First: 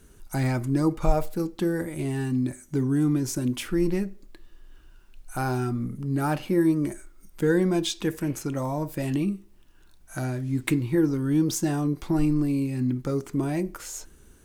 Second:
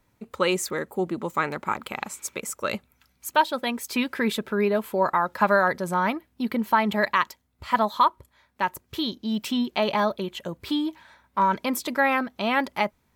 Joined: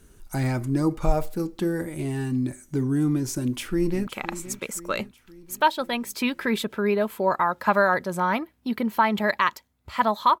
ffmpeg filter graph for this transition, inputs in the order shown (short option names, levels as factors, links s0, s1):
-filter_complex "[0:a]apad=whole_dur=10.4,atrim=end=10.4,atrim=end=4.072[s0];[1:a]atrim=start=1.808:end=8.14[s1];[s0][s1]acrossfade=d=0.004:c1=hsin:c2=hsin,asplit=2[s2][s3];[s3]afade=t=in:st=3.41:d=0.01,afade=t=out:st=4.07:d=0.01,aecho=0:1:520|1040|1560|2080|2600|3120:0.199526|0.109739|0.0603567|0.0331962|0.0182579|0.0100418[s4];[s2][s4]amix=inputs=2:normalize=0"